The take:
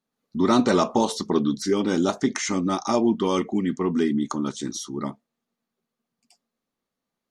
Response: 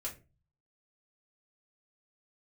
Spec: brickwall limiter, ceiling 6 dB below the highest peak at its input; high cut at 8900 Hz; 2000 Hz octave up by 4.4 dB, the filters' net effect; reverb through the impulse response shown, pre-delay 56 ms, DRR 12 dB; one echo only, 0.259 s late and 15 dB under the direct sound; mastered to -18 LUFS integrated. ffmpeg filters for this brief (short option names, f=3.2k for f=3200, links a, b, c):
-filter_complex "[0:a]lowpass=8.9k,equalizer=f=2k:t=o:g=5.5,alimiter=limit=-13dB:level=0:latency=1,aecho=1:1:259:0.178,asplit=2[a][b];[1:a]atrim=start_sample=2205,adelay=56[c];[b][c]afir=irnorm=-1:irlink=0,volume=-11.5dB[d];[a][d]amix=inputs=2:normalize=0,volume=6.5dB"